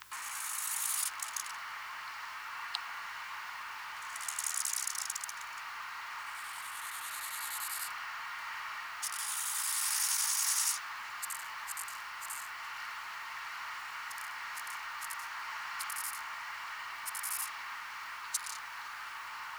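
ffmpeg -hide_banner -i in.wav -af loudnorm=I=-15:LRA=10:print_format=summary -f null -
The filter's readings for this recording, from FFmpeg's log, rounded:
Input Integrated:    -36.9 LUFS
Input True Peak:     -14.6 dBTP
Input LRA:             7.7 LU
Input Threshold:     -46.9 LUFS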